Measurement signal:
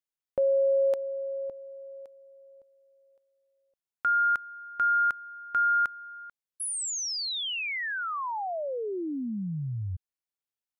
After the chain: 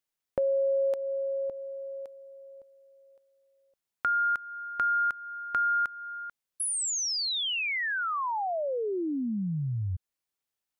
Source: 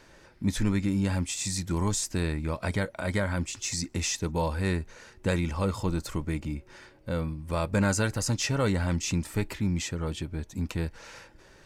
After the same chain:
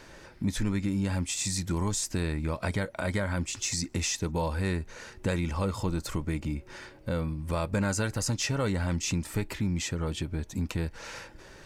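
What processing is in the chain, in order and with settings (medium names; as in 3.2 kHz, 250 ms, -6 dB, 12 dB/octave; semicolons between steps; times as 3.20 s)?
compression 2:1, threshold -36 dBFS; trim +5 dB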